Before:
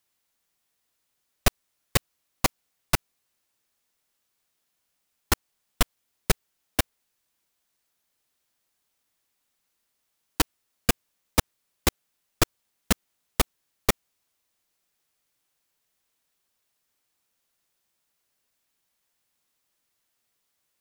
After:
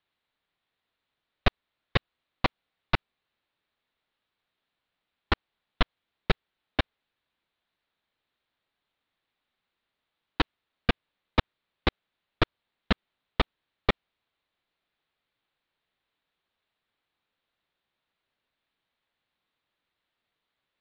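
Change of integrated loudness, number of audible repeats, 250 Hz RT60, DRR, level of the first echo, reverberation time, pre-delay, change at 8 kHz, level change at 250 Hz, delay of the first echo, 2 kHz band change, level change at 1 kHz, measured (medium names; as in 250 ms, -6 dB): -3.0 dB, no echo, no reverb, no reverb, no echo, no reverb, no reverb, under -30 dB, -1.0 dB, no echo, -0.5 dB, -0.5 dB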